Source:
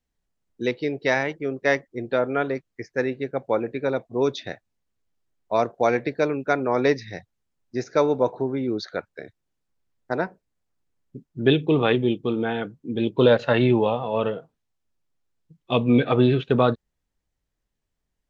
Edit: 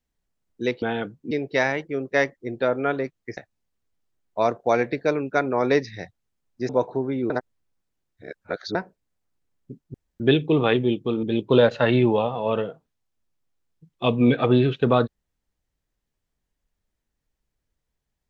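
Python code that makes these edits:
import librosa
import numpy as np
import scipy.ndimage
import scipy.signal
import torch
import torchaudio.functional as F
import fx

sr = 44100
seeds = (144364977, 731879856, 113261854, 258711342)

y = fx.edit(x, sr, fx.cut(start_s=2.88, length_s=1.63),
    fx.cut(start_s=7.83, length_s=0.31),
    fx.reverse_span(start_s=8.75, length_s=1.45),
    fx.insert_room_tone(at_s=11.39, length_s=0.26),
    fx.move(start_s=12.42, length_s=0.49, to_s=0.82), tone=tone)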